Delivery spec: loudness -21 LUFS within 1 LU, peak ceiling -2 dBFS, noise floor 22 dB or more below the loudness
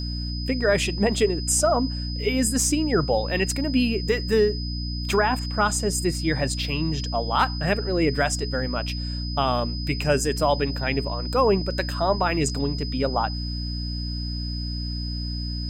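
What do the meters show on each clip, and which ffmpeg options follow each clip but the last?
hum 60 Hz; highest harmonic 300 Hz; hum level -27 dBFS; steady tone 5 kHz; tone level -34 dBFS; loudness -24.0 LUFS; peak level -9.0 dBFS; loudness target -21.0 LUFS
-> -af "bandreject=f=60:t=h:w=6,bandreject=f=120:t=h:w=6,bandreject=f=180:t=h:w=6,bandreject=f=240:t=h:w=6,bandreject=f=300:t=h:w=6"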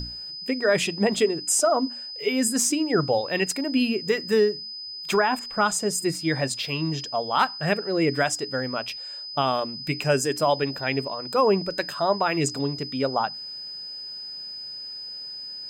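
hum not found; steady tone 5 kHz; tone level -34 dBFS
-> -af "bandreject=f=5000:w=30"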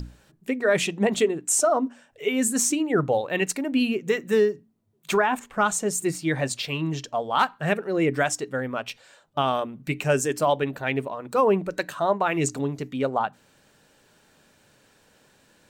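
steady tone not found; loudness -24.5 LUFS; peak level -10.5 dBFS; loudness target -21.0 LUFS
-> -af "volume=1.5"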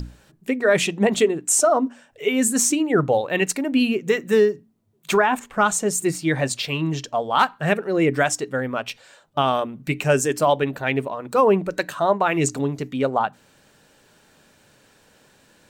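loudness -21.0 LUFS; peak level -7.0 dBFS; noise floor -57 dBFS

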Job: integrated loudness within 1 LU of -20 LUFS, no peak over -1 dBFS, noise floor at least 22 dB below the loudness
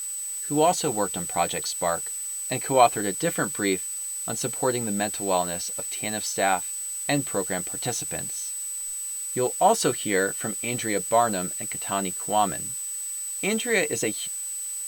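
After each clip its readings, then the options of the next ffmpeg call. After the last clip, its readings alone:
steady tone 8 kHz; tone level -30 dBFS; noise floor -33 dBFS; noise floor target -48 dBFS; loudness -25.5 LUFS; peak level -5.0 dBFS; loudness target -20.0 LUFS
-> -af "bandreject=f=8000:w=30"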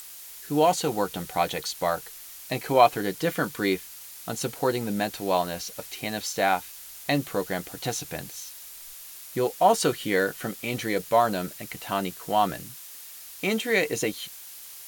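steady tone not found; noise floor -44 dBFS; noise floor target -49 dBFS
-> -af "afftdn=nr=6:nf=-44"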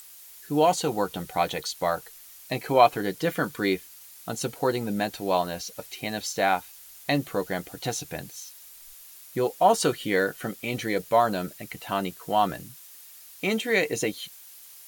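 noise floor -48 dBFS; noise floor target -49 dBFS
-> -af "afftdn=nr=6:nf=-48"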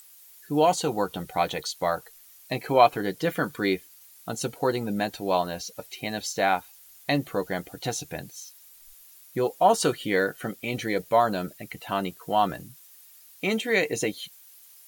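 noise floor -52 dBFS; loudness -26.5 LUFS; peak level -5.0 dBFS; loudness target -20.0 LUFS
-> -af "volume=2.11,alimiter=limit=0.891:level=0:latency=1"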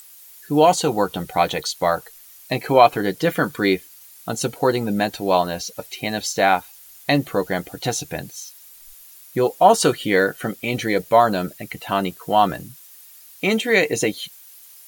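loudness -20.5 LUFS; peak level -1.0 dBFS; noise floor -46 dBFS

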